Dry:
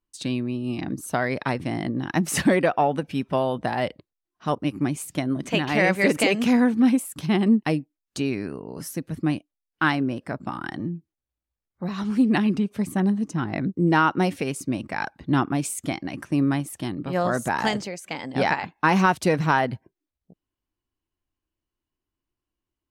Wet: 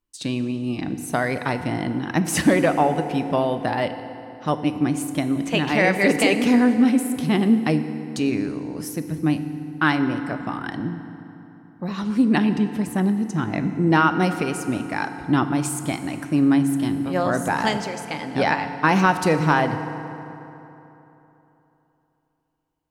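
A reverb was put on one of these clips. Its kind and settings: FDN reverb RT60 3.3 s, high-frequency decay 0.6×, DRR 8.5 dB; gain +1.5 dB

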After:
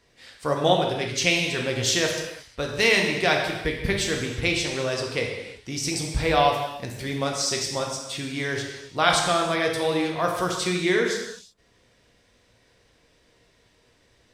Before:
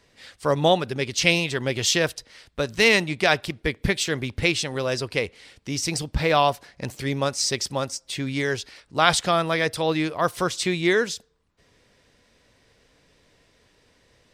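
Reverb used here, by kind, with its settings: non-linear reverb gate 0.38 s falling, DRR 0.5 dB; gain -3.5 dB

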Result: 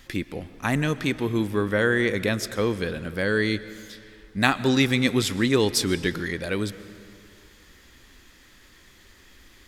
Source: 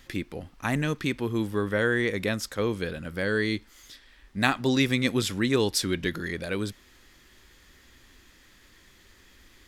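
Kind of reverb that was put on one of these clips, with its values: digital reverb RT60 2.3 s, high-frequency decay 0.75×, pre-delay 85 ms, DRR 15 dB; gain +3 dB

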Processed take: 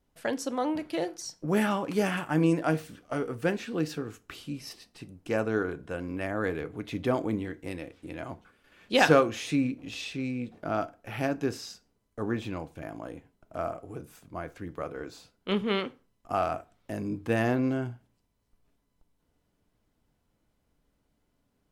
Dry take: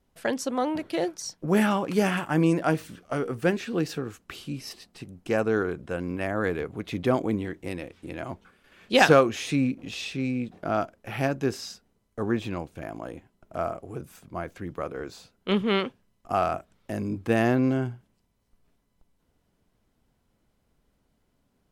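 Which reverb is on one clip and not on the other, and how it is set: FDN reverb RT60 0.35 s, low-frequency decay 0.95×, high-frequency decay 0.8×, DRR 11.5 dB; gain -3.5 dB

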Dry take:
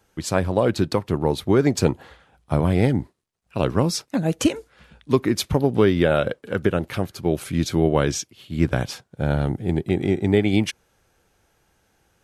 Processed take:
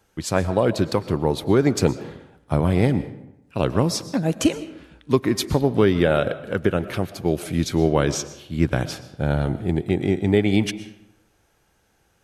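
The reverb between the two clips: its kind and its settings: digital reverb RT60 0.85 s, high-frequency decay 0.65×, pre-delay 80 ms, DRR 14 dB

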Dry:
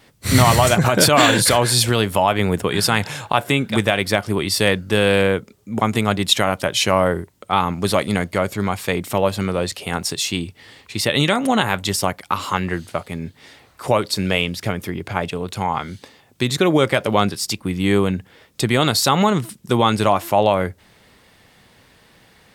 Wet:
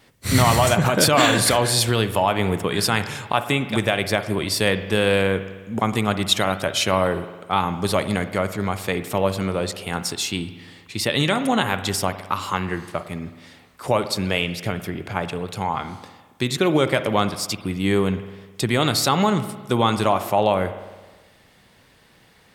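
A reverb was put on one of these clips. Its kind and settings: spring tank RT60 1.3 s, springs 52 ms, chirp 75 ms, DRR 11 dB; gain -3 dB

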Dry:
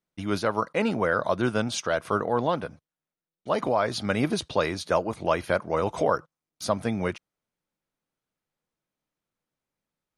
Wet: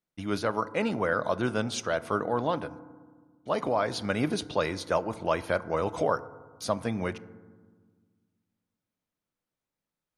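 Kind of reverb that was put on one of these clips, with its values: FDN reverb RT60 1.5 s, low-frequency decay 1.5×, high-frequency decay 0.3×, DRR 15.5 dB; gain -3 dB

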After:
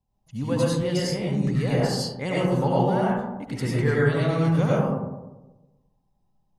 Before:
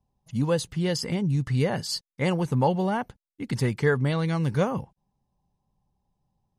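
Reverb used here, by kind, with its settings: digital reverb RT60 1.1 s, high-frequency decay 0.3×, pre-delay 55 ms, DRR -6.5 dB; gain -5 dB

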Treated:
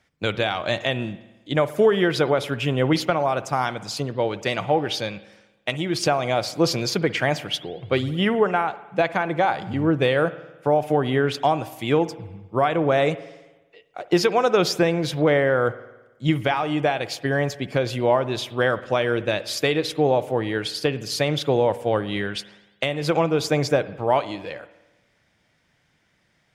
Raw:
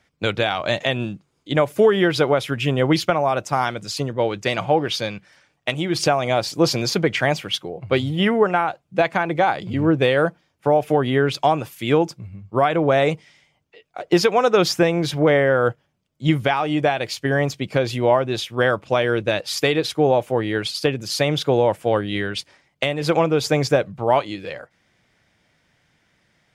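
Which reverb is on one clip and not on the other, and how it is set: spring tank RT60 1.1 s, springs 54 ms, chirp 65 ms, DRR 15 dB; gain -2.5 dB

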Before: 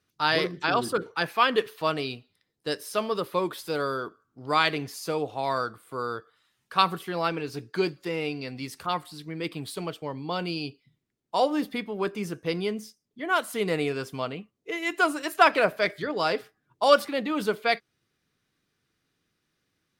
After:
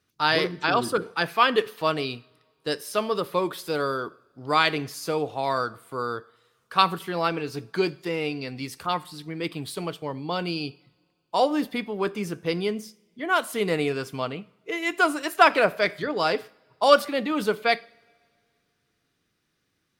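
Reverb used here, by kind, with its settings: two-slope reverb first 0.59 s, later 2.4 s, from -18 dB, DRR 19.5 dB; gain +2 dB

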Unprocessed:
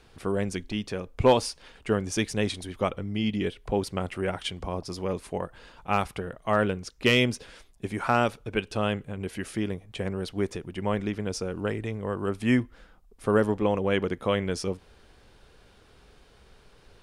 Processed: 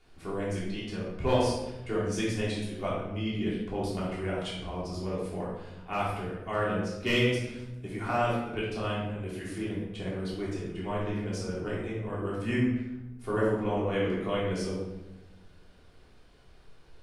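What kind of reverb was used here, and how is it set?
shoebox room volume 400 m³, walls mixed, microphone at 3.3 m; gain -12.5 dB

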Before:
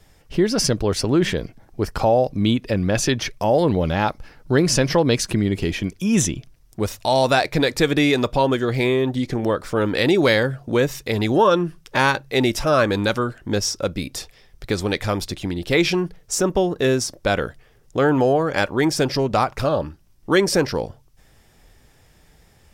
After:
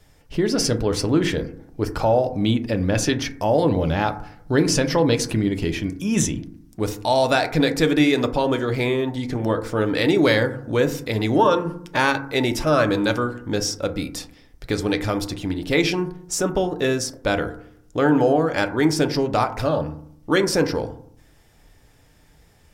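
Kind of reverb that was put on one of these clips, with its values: FDN reverb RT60 0.64 s, low-frequency decay 1.35×, high-frequency decay 0.3×, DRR 7.5 dB; gain -2 dB

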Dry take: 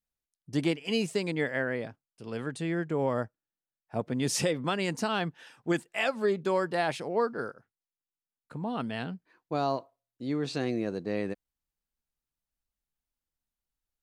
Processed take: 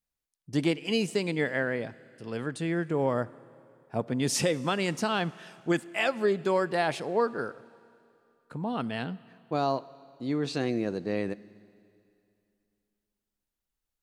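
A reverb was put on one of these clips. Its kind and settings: Schroeder reverb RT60 2.6 s, combs from 26 ms, DRR 19.5 dB; gain +1.5 dB

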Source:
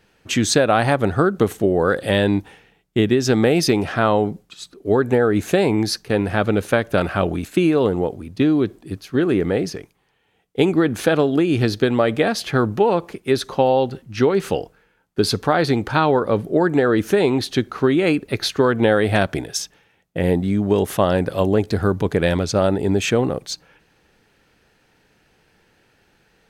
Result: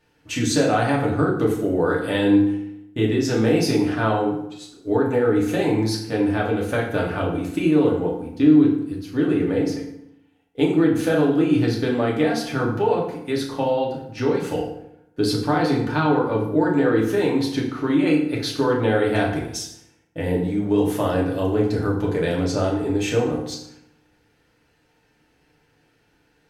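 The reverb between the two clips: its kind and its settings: FDN reverb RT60 0.78 s, low-frequency decay 1.2×, high-frequency decay 0.7×, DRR -3.5 dB; gain -9 dB

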